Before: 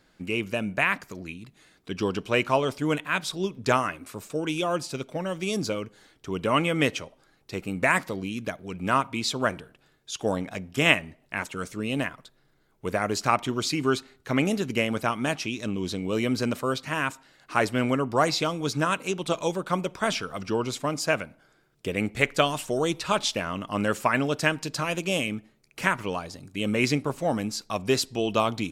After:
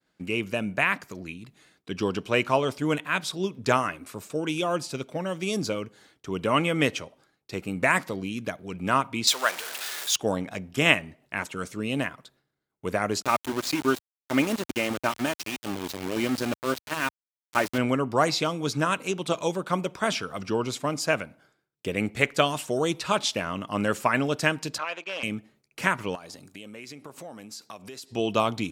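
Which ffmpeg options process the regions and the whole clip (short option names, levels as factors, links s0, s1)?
-filter_complex "[0:a]asettb=1/sr,asplit=3[s0][s1][s2];[s0]atrim=end=9.274[s3];[s1]atrim=start=9.27:end=10.16,asetpts=PTS-STARTPTS,afade=t=in:d=0.004:c=qsin,afade=t=out:st=0.886:d=0.004:c=qsin,aeval=exprs='val(0)+0.5*0.0266*sgn(val(0))':c=same,highpass=710,highshelf=f=2100:g=8[s4];[s2]atrim=start=10.156[s5];[s3][s4]acrossfade=d=0.004:c1=hsin:c2=qsin[s6];[s6][s5]acrossfade=d=0.004:c1=qsin:c2=hsin,asettb=1/sr,asplit=3[s7][s8][s9];[s7]atrim=end=13.224[s10];[s8]atrim=start=13.22:end=17.78,asetpts=PTS-STARTPTS,afade=t=in:d=0.004:c=qsin,afade=t=out:st=4.556:d=0.004:c=qsin,aecho=1:1:3.3:0.42,atrim=end_sample=201096,tremolo=f=6:d=0.31,aeval=exprs='val(0)*gte(abs(val(0)),0.0376)':c=same[s11];[s9]atrim=start=17.776[s12];[s10][s11]acrossfade=d=0.004:c1=hsin:c2=qsin[s13];[s13][s12]acrossfade=d=0.004:c1=qsin:c2=hsin,asettb=1/sr,asplit=3[s14][s15][s16];[s14]atrim=end=24.784[s17];[s15]atrim=start=24.78:end=25.23,asetpts=PTS-STARTPTS,afade=t=in:d=0.004:c=qsin,afade=t=out:st=0.446:d=0.004:c=qsin,aeval=exprs='0.106*(abs(mod(val(0)/0.106+3,4)-2)-1)':c=same,highpass=740,lowpass=3000,agate=range=0.355:threshold=0.00501:ratio=16:release=100:detection=peak[s18];[s16]atrim=start=25.226[s19];[s17][s18]acrossfade=d=0.004:c1=hsin:c2=qsin[s20];[s20][s19]acrossfade=d=0.004:c1=qsin:c2=hsin,asettb=1/sr,asplit=3[s21][s22][s23];[s21]atrim=end=26.154[s24];[s22]atrim=start=26.15:end=28.12,asetpts=PTS-STARTPTS,afade=t=in:d=0.004:c=qsin,afade=t=out:st=1.966:d=0.004:c=qsin,highshelf=f=9500:g=5.5,acompressor=threshold=0.0158:ratio=12:attack=3.2:release=140:knee=1:detection=peak,highpass=f=250:p=1[s25];[s23]atrim=start=28.116[s26];[s24][s25]acrossfade=d=0.004:c1=hsin:c2=qsin[s27];[s27][s26]acrossfade=d=0.004:c1=qsin:c2=hsin,agate=range=0.0224:threshold=0.00178:ratio=3:detection=peak,highpass=69"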